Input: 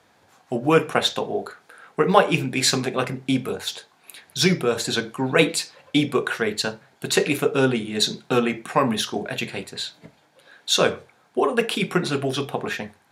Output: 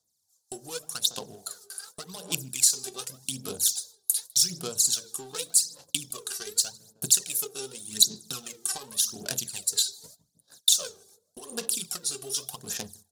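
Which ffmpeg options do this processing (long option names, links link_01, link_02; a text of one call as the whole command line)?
ffmpeg -i in.wav -filter_complex "[0:a]agate=range=-25dB:threshold=-48dB:ratio=16:detection=peak,equalizer=frequency=360:width=0.66:gain=-4.5,acompressor=threshold=-36dB:ratio=6,asplit=2[link_01][link_02];[link_02]adelay=157,lowpass=frequency=1100:poles=1,volume=-14dB,asplit=2[link_03][link_04];[link_04]adelay=157,lowpass=frequency=1100:poles=1,volume=0.34,asplit=2[link_05][link_06];[link_06]adelay=157,lowpass=frequency=1100:poles=1,volume=0.34[link_07];[link_03][link_05][link_07]amix=inputs=3:normalize=0[link_08];[link_01][link_08]amix=inputs=2:normalize=0,aphaser=in_gain=1:out_gain=1:delay=2.6:decay=0.71:speed=0.86:type=sinusoidal,acrossover=split=4400[link_09][link_10];[link_09]adynamicsmooth=sensitivity=7:basefreq=870[link_11];[link_11][link_10]amix=inputs=2:normalize=0,aexciter=amount=14.5:drive=5.3:freq=3300,volume=-7dB" out.wav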